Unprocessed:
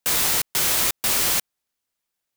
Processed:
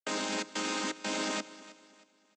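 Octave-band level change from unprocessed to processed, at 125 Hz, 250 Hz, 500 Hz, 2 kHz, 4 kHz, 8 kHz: -12.0 dB, +2.0 dB, -2.5 dB, -8.0 dB, -11.5 dB, -17.0 dB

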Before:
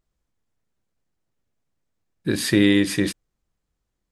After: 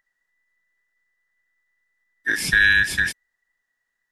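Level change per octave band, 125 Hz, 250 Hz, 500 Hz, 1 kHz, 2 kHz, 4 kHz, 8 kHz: -8.5 dB, -20.0 dB, -18.0 dB, +4.5 dB, +12.5 dB, +0.5 dB, 0.0 dB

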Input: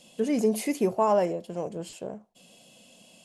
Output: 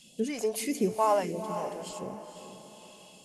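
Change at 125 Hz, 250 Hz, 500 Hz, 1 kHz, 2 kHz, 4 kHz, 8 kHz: -2.5 dB, -5.0 dB, -4.0 dB, -0.5 dB, -1.0 dB, +1.0 dB, +1.0 dB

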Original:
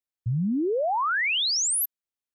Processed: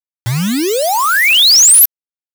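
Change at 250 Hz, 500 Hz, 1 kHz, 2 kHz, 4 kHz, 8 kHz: +9.5 dB, +9.5 dB, +11.0 dB, +13.5 dB, +17.0 dB, +18.5 dB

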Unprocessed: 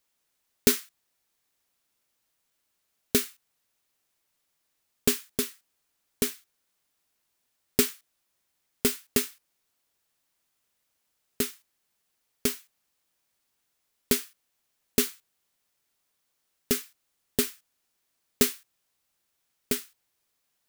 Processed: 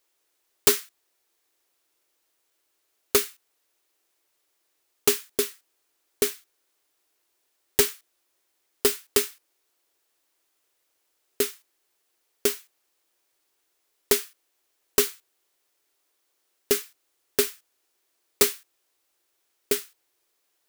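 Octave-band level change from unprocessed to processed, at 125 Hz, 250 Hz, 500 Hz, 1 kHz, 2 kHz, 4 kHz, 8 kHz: -6.0 dB, -5.5 dB, +5.5 dB, +7.0 dB, +3.5 dB, +3.0 dB, +3.5 dB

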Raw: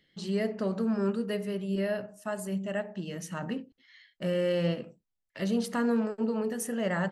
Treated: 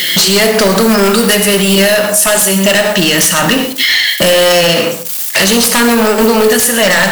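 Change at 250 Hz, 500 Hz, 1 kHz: +17.0 dB, +21.0 dB, +24.5 dB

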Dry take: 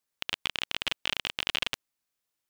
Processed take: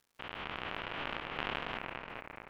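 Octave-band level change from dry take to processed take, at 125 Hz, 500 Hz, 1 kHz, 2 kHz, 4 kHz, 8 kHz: +2.0 dB, +2.5 dB, +2.0 dB, -5.5 dB, -13.5 dB, under -25 dB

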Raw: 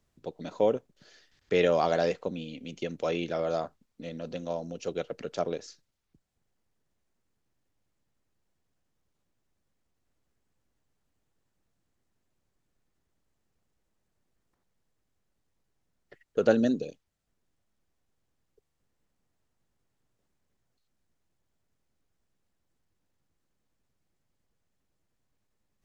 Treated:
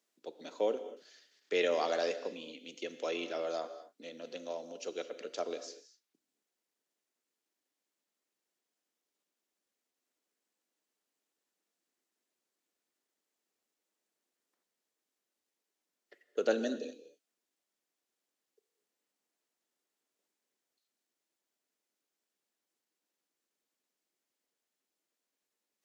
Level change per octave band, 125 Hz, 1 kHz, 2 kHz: under -20 dB, -6.5 dB, -3.5 dB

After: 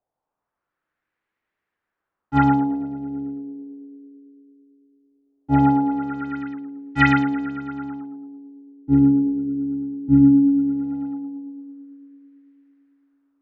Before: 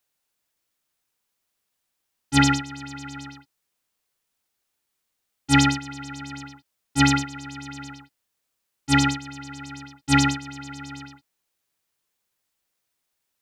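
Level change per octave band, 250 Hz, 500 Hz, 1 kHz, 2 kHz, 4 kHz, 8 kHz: +8.0 dB, +6.0 dB, +3.0 dB, -1.0 dB, -14.5 dB, under -25 dB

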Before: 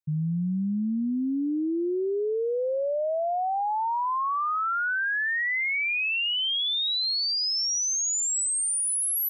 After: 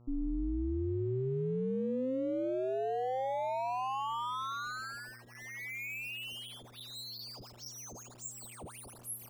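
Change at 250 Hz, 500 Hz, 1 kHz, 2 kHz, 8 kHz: -8.5 dB, -6.5 dB, -9.0 dB, -16.5 dB, -21.5 dB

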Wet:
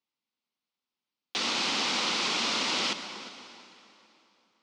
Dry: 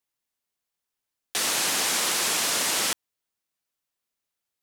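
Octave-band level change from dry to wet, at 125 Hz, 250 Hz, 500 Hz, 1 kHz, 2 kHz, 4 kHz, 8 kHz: -1.0 dB, +2.0 dB, -3.0 dB, -1.0 dB, -2.5 dB, -1.0 dB, -12.0 dB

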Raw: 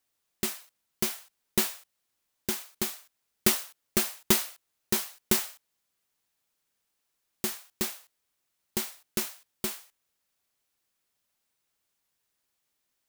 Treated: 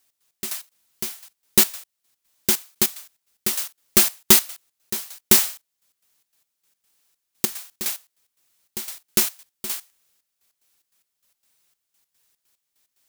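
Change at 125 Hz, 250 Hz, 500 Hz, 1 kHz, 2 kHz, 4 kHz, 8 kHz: +3.0 dB, +3.5 dB, +3.5 dB, +4.5 dB, +6.0 dB, +8.0 dB, +10.0 dB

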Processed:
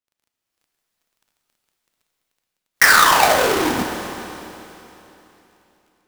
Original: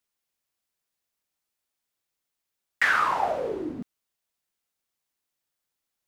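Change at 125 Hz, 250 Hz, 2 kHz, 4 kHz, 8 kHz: +13.5 dB, +11.5 dB, +10.5 dB, +19.5 dB, +26.5 dB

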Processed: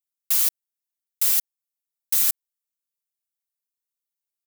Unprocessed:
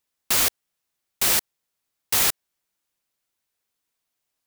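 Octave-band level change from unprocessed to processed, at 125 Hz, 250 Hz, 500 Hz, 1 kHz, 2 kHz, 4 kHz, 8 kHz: under -15 dB, under -15 dB, under -15 dB, -14.0 dB, -11.5 dB, -7.0 dB, -1.5 dB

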